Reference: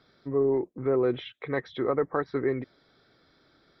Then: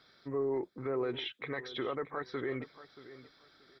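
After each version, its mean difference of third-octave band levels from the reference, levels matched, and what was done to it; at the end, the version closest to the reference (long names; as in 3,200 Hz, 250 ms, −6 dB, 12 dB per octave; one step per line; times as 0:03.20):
4.0 dB: tilt shelving filter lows −5.5 dB, about 840 Hz
brickwall limiter −24.5 dBFS, peak gain reduction 10 dB
on a send: repeating echo 630 ms, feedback 24%, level −16 dB
on the sum: level −2 dB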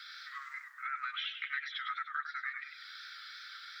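18.5 dB: Butterworth high-pass 1,300 Hz 96 dB per octave
downward compressor 4 to 1, threshold −57 dBFS, peak gain reduction 21.5 dB
feedback echo with a swinging delay time 100 ms, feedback 45%, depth 143 cents, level −7.5 dB
level +18 dB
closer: first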